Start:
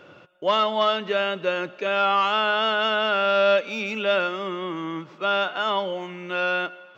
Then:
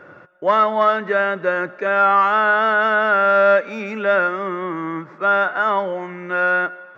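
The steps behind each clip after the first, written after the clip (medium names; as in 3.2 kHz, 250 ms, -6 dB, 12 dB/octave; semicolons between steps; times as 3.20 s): resonant high shelf 2.3 kHz -8 dB, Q 3; trim +4 dB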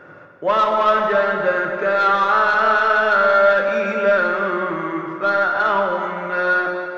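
chunks repeated in reverse 196 ms, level -13 dB; saturation -10.5 dBFS, distortion -16 dB; plate-style reverb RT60 2.7 s, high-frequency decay 0.75×, DRR 2 dB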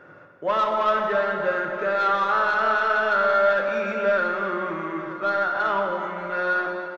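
delay 927 ms -17.5 dB; trim -5.5 dB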